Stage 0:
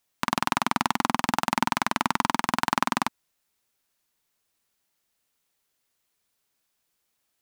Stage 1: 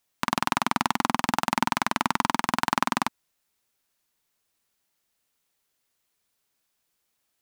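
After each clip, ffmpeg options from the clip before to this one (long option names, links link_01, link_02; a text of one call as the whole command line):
ffmpeg -i in.wav -af anull out.wav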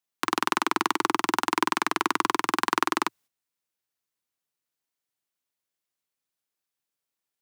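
ffmpeg -i in.wav -af "agate=range=-11dB:threshold=-52dB:ratio=16:detection=peak,afreqshift=90" out.wav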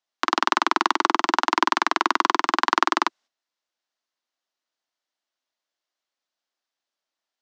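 ffmpeg -i in.wav -af "highpass=frequency=260:width=0.5412,highpass=frequency=260:width=1.3066,equalizer=frequency=310:width_type=q:width=4:gain=-3,equalizer=frequency=440:width_type=q:width=4:gain=-7,equalizer=frequency=640:width_type=q:width=4:gain=4,equalizer=frequency=2400:width_type=q:width=4:gain=-4,lowpass=frequency=6000:width=0.5412,lowpass=frequency=6000:width=1.3066,volume=5dB" out.wav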